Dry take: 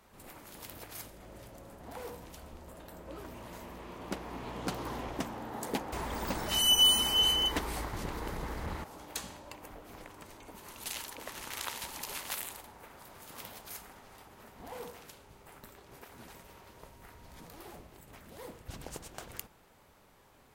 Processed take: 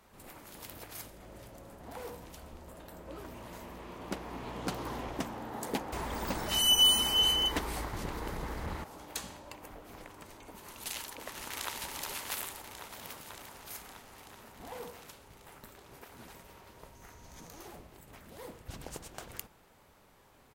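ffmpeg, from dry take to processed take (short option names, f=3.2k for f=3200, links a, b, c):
-filter_complex "[0:a]asplit=2[a][b];[b]afade=t=in:st=11.01:d=0.01,afade=t=out:st=11.74:d=0.01,aecho=0:1:380|760|1140|1520|1900|2280|2660|3040|3420|3800|4180|4560:0.473151|0.378521|0.302817|0.242253|0.193803|0.155042|0.124034|0.099227|0.0793816|0.0635053|0.0508042|0.0406434[c];[a][c]amix=inputs=2:normalize=0,asettb=1/sr,asplit=3[d][e][f];[d]atrim=end=16.954[g];[e]atrim=start=16.95:end=17.68,asetpts=PTS-STARTPTS,afade=t=in:d=0.004:c=qsin,afade=t=out:st=0.726:d=0.004:c=qsin,equalizer=f=6.3k:t=o:w=0.3:g=11.5[h];[f]atrim=start=17.676[i];[g][h]acrossfade=d=0.004:c1=hsin:c2=qsin[j];[j][i]acrossfade=d=0.004:c1=qsin:c2=hsin,asplit=3[k][l][m];[k]atrim=end=12.892[n];[l]atrim=start=12.888:end=13.622,asetpts=PTS-STARTPTS,areverse[o];[m]atrim=start=13.618[p];[n][o]acrossfade=d=0.004:c1=hsin:c2=hsin[q];[q][p]acrossfade=d=0.004:c1=hsin:c2=hsin"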